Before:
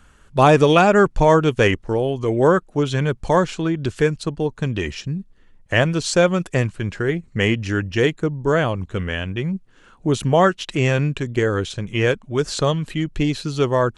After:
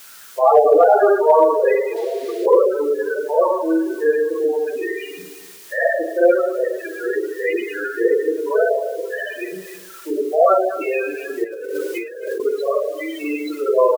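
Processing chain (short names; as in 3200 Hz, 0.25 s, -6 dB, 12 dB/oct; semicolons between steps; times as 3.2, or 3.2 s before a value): HPF 380 Hz 24 dB/oct; spring tank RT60 1.1 s, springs 37/43 ms, chirp 55 ms, DRR -9.5 dB; loudest bins only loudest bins 8; in parallel at -8.5 dB: requantised 6-bit, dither triangular; 1.96–2.46 on the sum: graphic EQ 500/2000/4000 Hz -7/+11/+8 dB; 11.44–12.4 negative-ratio compressor -22 dBFS, ratio -1; on a send: feedback echo 0.266 s, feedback 51%, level -23.5 dB; on the sum: mismatched tape noise reduction encoder only; gain -7 dB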